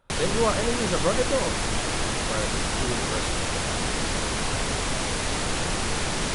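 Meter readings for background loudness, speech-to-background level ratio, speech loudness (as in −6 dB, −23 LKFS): −26.5 LKFS, −2.5 dB, −29.0 LKFS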